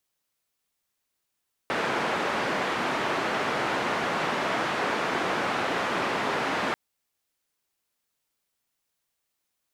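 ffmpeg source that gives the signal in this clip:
ffmpeg -f lavfi -i "anoisesrc=color=white:duration=5.04:sample_rate=44100:seed=1,highpass=frequency=190,lowpass=frequency=1500,volume=-10.9dB" out.wav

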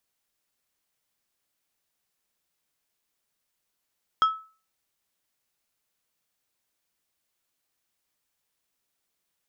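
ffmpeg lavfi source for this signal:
ffmpeg -f lavfi -i "aevalsrc='0.2*pow(10,-3*t/0.37)*sin(2*PI*1300*t)+0.0501*pow(10,-3*t/0.195)*sin(2*PI*3250*t)+0.0126*pow(10,-3*t/0.14)*sin(2*PI*5200*t)+0.00316*pow(10,-3*t/0.12)*sin(2*PI*6500*t)+0.000794*pow(10,-3*t/0.1)*sin(2*PI*8450*t)':duration=0.89:sample_rate=44100" out.wav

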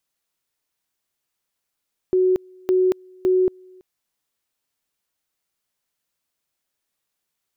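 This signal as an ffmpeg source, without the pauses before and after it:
ffmpeg -f lavfi -i "aevalsrc='pow(10,(-14-29.5*gte(mod(t,0.56),0.23))/20)*sin(2*PI*370*t)':duration=1.68:sample_rate=44100" out.wav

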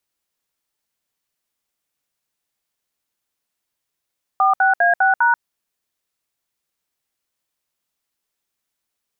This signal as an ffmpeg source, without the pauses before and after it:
ffmpeg -f lavfi -i "aevalsrc='0.188*clip(min(mod(t,0.201),0.136-mod(t,0.201))/0.002,0,1)*(eq(floor(t/0.201),0)*(sin(2*PI*770*mod(t,0.201))+sin(2*PI*1209*mod(t,0.201)))+eq(floor(t/0.201),1)*(sin(2*PI*770*mod(t,0.201))+sin(2*PI*1477*mod(t,0.201)))+eq(floor(t/0.201),2)*(sin(2*PI*697*mod(t,0.201))+sin(2*PI*1633*mod(t,0.201)))+eq(floor(t/0.201),3)*(sin(2*PI*770*mod(t,0.201))+sin(2*PI*1477*mod(t,0.201)))+eq(floor(t/0.201),4)*(sin(2*PI*941*mod(t,0.201))+sin(2*PI*1477*mod(t,0.201))))':duration=1.005:sample_rate=44100" out.wav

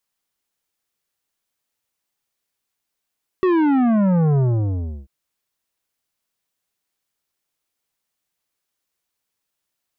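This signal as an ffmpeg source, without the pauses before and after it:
ffmpeg -f lavfi -i "aevalsrc='0.178*clip((1.64-t)/0.69,0,1)*tanh(3.76*sin(2*PI*380*1.64/log(65/380)*(exp(log(65/380)*t/1.64)-1)))/tanh(3.76)':duration=1.64:sample_rate=44100" out.wav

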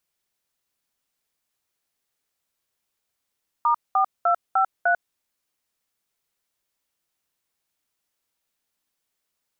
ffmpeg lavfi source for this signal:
ffmpeg -f lavfi -i "aevalsrc='0.112*clip(min(mod(t,0.301),0.095-mod(t,0.301))/0.002,0,1)*(eq(floor(t/0.301),0)*(sin(2*PI*941*mod(t,0.301))+sin(2*PI*1209*mod(t,0.301)))+eq(floor(t/0.301),1)*(sin(2*PI*770*mod(t,0.301))+sin(2*PI*1209*mod(t,0.301)))+eq(floor(t/0.301),2)*(sin(2*PI*697*mod(t,0.301))+sin(2*PI*1336*mod(t,0.301)))+eq(floor(t/0.301),3)*(sin(2*PI*770*mod(t,0.301))+sin(2*PI*1336*mod(t,0.301)))+eq(floor(t/0.301),4)*(sin(2*PI*697*mod(t,0.301))+sin(2*PI*1477*mod(t,0.301))))':duration=1.505:sample_rate=44100" out.wav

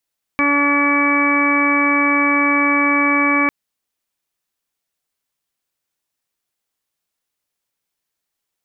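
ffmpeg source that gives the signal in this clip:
ffmpeg -f lavfi -i "aevalsrc='0.126*sin(2*PI*286*t)+0.0501*sin(2*PI*572*t)+0.0422*sin(2*PI*858*t)+0.112*sin(2*PI*1144*t)+0.0224*sin(2*PI*1430*t)+0.0562*sin(2*PI*1716*t)+0.0251*sin(2*PI*2002*t)+0.15*sin(2*PI*2288*t)':duration=3.1:sample_rate=44100" out.wav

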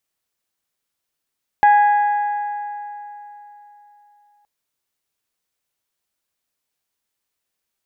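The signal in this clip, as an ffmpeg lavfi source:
ffmpeg -f lavfi -i "aevalsrc='0.398*pow(10,-3*t/3.5)*sin(2*PI*827*t)+0.119*pow(10,-3*t/2.843)*sin(2*PI*1654*t)+0.0355*pow(10,-3*t/2.692)*sin(2*PI*1984.8*t)+0.0106*pow(10,-3*t/2.517)*sin(2*PI*2481*t)+0.00316*pow(10,-3*t/2.309)*sin(2*PI*3308*t)':duration=2.82:sample_rate=44100" out.wav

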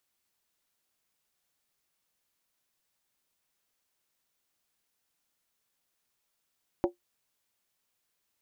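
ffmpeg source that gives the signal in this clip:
ffmpeg -f lavfi -i "aevalsrc='0.112*pow(10,-3*t/0.13)*sin(2*PI*352*t)+0.0631*pow(10,-3*t/0.103)*sin(2*PI*561.1*t)+0.0355*pow(10,-3*t/0.089)*sin(2*PI*751.9*t)+0.02*pow(10,-3*t/0.086)*sin(2*PI*808.2*t)+0.0112*pow(10,-3*t/0.08)*sin(2*PI*933.9*t)':duration=0.63:sample_rate=44100" out.wav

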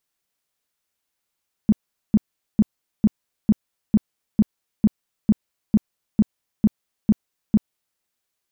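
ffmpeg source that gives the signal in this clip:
ffmpeg -f lavfi -i "aevalsrc='0.316*sin(2*PI*213*mod(t,0.45))*lt(mod(t,0.45),7/213)':duration=6.3:sample_rate=44100" out.wav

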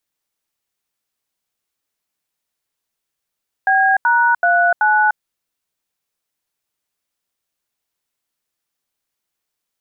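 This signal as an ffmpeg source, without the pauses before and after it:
ffmpeg -f lavfi -i "aevalsrc='0.211*clip(min(mod(t,0.38),0.298-mod(t,0.38))/0.002,0,1)*(eq(floor(t/0.38),0)*(sin(2*PI*770*mod(t,0.38))+sin(2*PI*1633*mod(t,0.38)))+eq(floor(t/0.38),1)*(sin(2*PI*941*mod(t,0.38))+sin(2*PI*1477*mod(t,0.38)))+eq(floor(t/0.38),2)*(sin(2*PI*697*mod(t,0.38))+sin(2*PI*1477*mod(t,0.38)))+eq(floor(t/0.38),3)*(sin(2*PI*852*mod(t,0.38))+sin(2*PI*1477*mod(t,0.38))))':duration=1.52:sample_rate=44100" out.wav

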